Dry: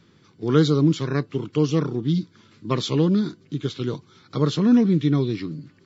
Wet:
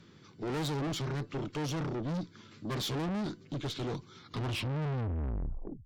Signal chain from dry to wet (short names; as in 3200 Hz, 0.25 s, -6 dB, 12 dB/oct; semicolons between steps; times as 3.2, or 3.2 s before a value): tape stop at the end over 1.67 s; tube stage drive 32 dB, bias 0.3